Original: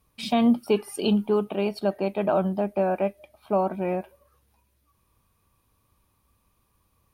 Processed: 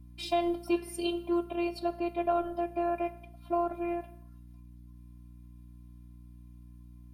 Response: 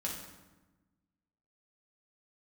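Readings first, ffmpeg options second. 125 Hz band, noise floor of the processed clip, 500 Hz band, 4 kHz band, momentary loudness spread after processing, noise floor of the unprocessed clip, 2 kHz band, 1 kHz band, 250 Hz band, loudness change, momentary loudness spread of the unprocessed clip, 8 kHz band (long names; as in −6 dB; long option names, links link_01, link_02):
−12.5 dB, −51 dBFS, −7.5 dB, −5.5 dB, 5 LU, −70 dBFS, −5.5 dB, −3.5 dB, −7.5 dB, −7.0 dB, 7 LU, can't be measured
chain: -filter_complex "[0:a]asplit=2[link_01][link_02];[1:a]atrim=start_sample=2205,afade=type=out:start_time=0.31:duration=0.01,atrim=end_sample=14112,lowshelf=frequency=200:gain=-11[link_03];[link_02][link_03]afir=irnorm=-1:irlink=0,volume=-11.5dB[link_04];[link_01][link_04]amix=inputs=2:normalize=0,afftfilt=real='hypot(re,im)*cos(PI*b)':imag='0':win_size=512:overlap=0.75,aeval=exprs='val(0)+0.00501*(sin(2*PI*60*n/s)+sin(2*PI*2*60*n/s)/2+sin(2*PI*3*60*n/s)/3+sin(2*PI*4*60*n/s)/4+sin(2*PI*5*60*n/s)/5)':channel_layout=same,volume=-3dB"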